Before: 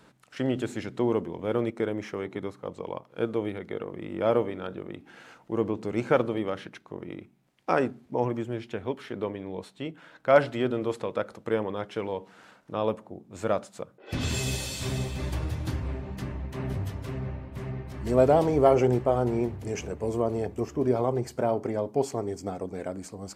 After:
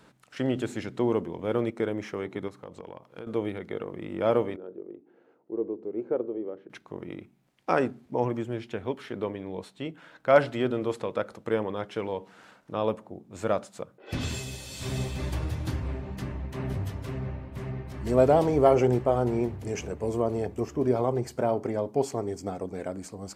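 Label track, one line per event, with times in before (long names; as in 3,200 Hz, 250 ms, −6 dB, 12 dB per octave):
2.480000	3.270000	downward compressor, threshold −37 dBFS
4.560000	6.700000	resonant band-pass 390 Hz, Q 2.9
14.120000	15.000000	duck −8.5 dB, fades 0.35 s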